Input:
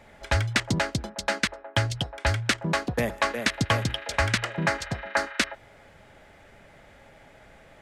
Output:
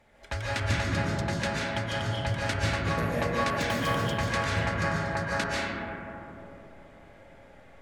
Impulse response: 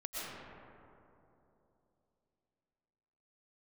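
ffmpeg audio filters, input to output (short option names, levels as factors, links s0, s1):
-filter_complex "[0:a]asettb=1/sr,asplit=3[s0][s1][s2];[s0]atrim=end=3.584[s3];[s1]atrim=start=3.58:end=4.15,asetpts=PTS-STARTPTS,afade=t=in:d=0.004:c=qsin,afade=t=out:st=0.566:d=0.004:c=qsin,acrusher=bits=3:mode=log:mix=0:aa=0.000001[s4];[s2]atrim=start=4.146[s5];[s3][s4]acrossfade=d=0.004:c1=hsin:c2=qsin[s6];[s6][s5]acrossfade=d=0.004:c1=qsin:c2=hsin[s7];[1:a]atrim=start_sample=2205,asetrate=37926,aresample=44100[s8];[s7][s8]afir=irnorm=-1:irlink=0,volume=0.531"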